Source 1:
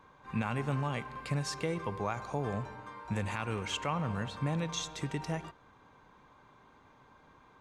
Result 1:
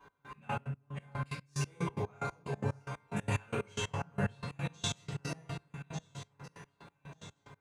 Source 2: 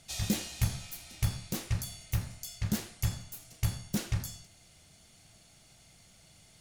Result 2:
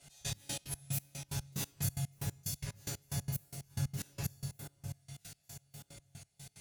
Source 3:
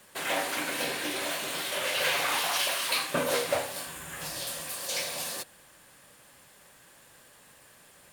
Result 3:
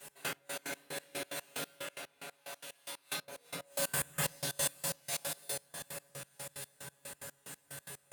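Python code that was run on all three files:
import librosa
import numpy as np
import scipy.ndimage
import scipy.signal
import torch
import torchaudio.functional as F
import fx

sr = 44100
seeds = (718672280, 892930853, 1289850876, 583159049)

p1 = fx.high_shelf(x, sr, hz=5200.0, db=4.5)
p2 = fx.comb_fb(p1, sr, f0_hz=140.0, decay_s=0.53, harmonics='all', damping=0.0, mix_pct=90)
p3 = fx.over_compress(p2, sr, threshold_db=-48.0, ratio=-0.5)
p4 = p3 + fx.echo_alternate(p3, sr, ms=598, hz=1600.0, feedback_pct=65, wet_db=-8.5, dry=0)
p5 = fx.room_shoebox(p4, sr, seeds[0], volume_m3=58.0, walls='mixed', distance_m=3.0)
p6 = fx.step_gate(p5, sr, bpm=183, pattern='x..x..x.', floor_db=-24.0, edge_ms=4.5)
y = scipy.signal.sosfilt(scipy.signal.butter(2, 69.0, 'highpass', fs=sr, output='sos'), p6)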